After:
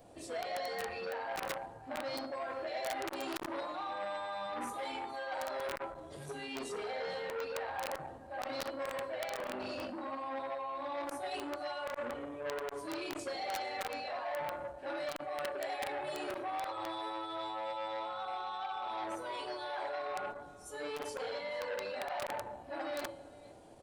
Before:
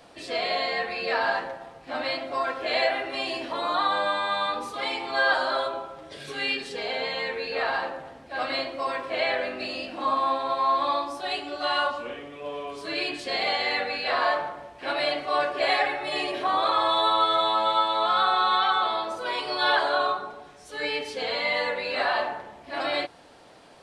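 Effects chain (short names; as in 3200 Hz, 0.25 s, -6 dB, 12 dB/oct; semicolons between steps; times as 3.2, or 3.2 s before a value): low shelf 96 Hz +7 dB; in parallel at -2.5 dB: limiter -22 dBFS, peak gain reduction 11 dB; on the sum: reverb RT60 1.5 s, pre-delay 6 ms, DRR 14.5 dB; spectral noise reduction 8 dB; reverse; compressor 20:1, threshold -29 dBFS, peak gain reduction 14 dB; reverse; band shelf 2400 Hz -10 dB 2.7 oct; resonator 110 Hz, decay 0.55 s, harmonics odd, mix 70%; echo 0.459 s -22 dB; wrapped overs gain 35.5 dB; core saturation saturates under 1100 Hz; gain +8.5 dB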